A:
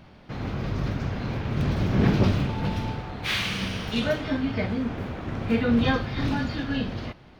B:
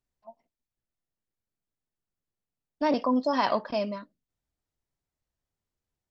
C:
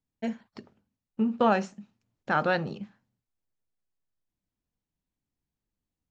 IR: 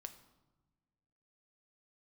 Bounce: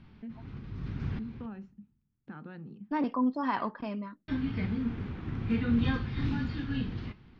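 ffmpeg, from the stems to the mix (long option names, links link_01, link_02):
-filter_complex "[0:a]lowpass=4400,lowshelf=frequency=440:gain=6,flanger=delay=4.3:depth=9.2:regen=84:speed=0.41:shape=sinusoidal,volume=-4.5dB,asplit=3[link_01][link_02][link_03];[link_01]atrim=end=1.46,asetpts=PTS-STARTPTS,afade=type=out:start_time=1.456:duration=0.004:curve=hsin[link_04];[link_02]atrim=start=1.46:end=4.28,asetpts=PTS-STARTPTS,volume=0[link_05];[link_03]atrim=start=4.28,asetpts=PTS-STARTPTS,afade=type=in:duration=0.004:curve=hsin[link_06];[link_04][link_05][link_06]concat=n=3:v=0:a=1,asplit=2[link_07][link_08];[link_08]volume=-15dB[link_09];[1:a]lowpass=1800,adelay=100,volume=-0.5dB[link_10];[2:a]lowpass=3000,equalizer=frequency=220:width=0.51:gain=14.5,acompressor=threshold=-28dB:ratio=2,volume=-16.5dB,asplit=2[link_11][link_12];[link_12]apad=whole_len=326336[link_13];[link_07][link_13]sidechaincompress=threshold=-60dB:ratio=3:attack=8.8:release=418[link_14];[3:a]atrim=start_sample=2205[link_15];[link_09][link_15]afir=irnorm=-1:irlink=0[link_16];[link_14][link_10][link_11][link_16]amix=inputs=4:normalize=0,equalizer=frequency=610:width=1.9:gain=-14"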